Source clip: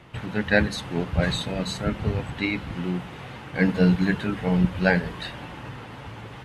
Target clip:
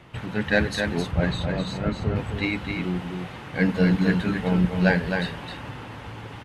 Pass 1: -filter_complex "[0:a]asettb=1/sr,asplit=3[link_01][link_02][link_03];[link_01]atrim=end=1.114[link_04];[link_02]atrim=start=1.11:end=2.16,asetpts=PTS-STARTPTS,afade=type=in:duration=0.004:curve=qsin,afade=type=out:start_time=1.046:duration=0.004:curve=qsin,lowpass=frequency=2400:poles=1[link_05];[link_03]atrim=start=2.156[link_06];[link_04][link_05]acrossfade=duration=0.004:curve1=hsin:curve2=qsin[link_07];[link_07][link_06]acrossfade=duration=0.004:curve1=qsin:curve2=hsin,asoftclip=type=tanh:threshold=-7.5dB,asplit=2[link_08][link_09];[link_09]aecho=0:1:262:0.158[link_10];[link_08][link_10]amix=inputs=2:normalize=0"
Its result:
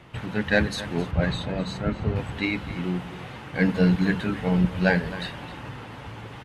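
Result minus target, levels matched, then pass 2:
echo-to-direct −10.5 dB
-filter_complex "[0:a]asettb=1/sr,asplit=3[link_01][link_02][link_03];[link_01]atrim=end=1.114[link_04];[link_02]atrim=start=1.11:end=2.16,asetpts=PTS-STARTPTS,afade=type=in:duration=0.004:curve=qsin,afade=type=out:start_time=1.046:duration=0.004:curve=qsin,lowpass=frequency=2400:poles=1[link_05];[link_03]atrim=start=2.156[link_06];[link_04][link_05]acrossfade=duration=0.004:curve1=hsin:curve2=qsin[link_07];[link_07][link_06]acrossfade=duration=0.004:curve1=qsin:curve2=hsin,asoftclip=type=tanh:threshold=-7.5dB,asplit=2[link_08][link_09];[link_09]aecho=0:1:262:0.531[link_10];[link_08][link_10]amix=inputs=2:normalize=0"

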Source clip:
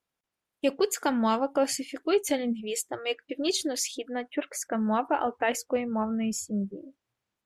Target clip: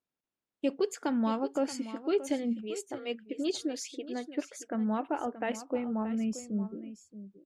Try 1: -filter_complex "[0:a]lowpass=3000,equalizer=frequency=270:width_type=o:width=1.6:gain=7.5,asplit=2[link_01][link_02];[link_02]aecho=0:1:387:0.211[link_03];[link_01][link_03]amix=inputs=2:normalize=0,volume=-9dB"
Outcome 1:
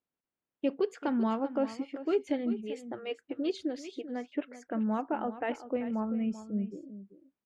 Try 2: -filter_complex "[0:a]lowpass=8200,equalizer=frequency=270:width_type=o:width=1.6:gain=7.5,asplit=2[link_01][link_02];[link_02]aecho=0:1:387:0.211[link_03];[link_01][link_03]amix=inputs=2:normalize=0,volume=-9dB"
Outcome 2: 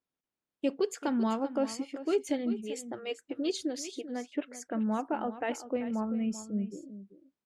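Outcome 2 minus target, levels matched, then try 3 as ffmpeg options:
echo 240 ms early
-filter_complex "[0:a]lowpass=8200,equalizer=frequency=270:width_type=o:width=1.6:gain=7.5,asplit=2[link_01][link_02];[link_02]aecho=0:1:627:0.211[link_03];[link_01][link_03]amix=inputs=2:normalize=0,volume=-9dB"

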